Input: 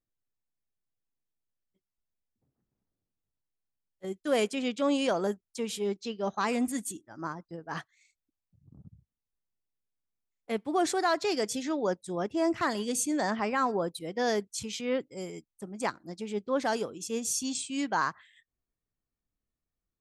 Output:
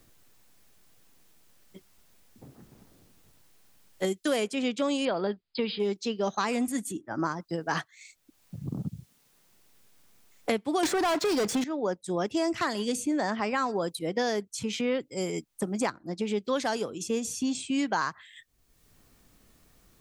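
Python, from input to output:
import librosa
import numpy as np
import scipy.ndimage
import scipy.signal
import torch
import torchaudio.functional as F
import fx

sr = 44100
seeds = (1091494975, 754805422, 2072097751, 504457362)

y = fx.brickwall_lowpass(x, sr, high_hz=5100.0, at=(5.05, 5.8))
y = fx.leveller(y, sr, passes=5, at=(10.83, 11.64))
y = fx.high_shelf(y, sr, hz=3800.0, db=-11.5, at=(15.9, 16.45))
y = fx.band_squash(y, sr, depth_pct=100)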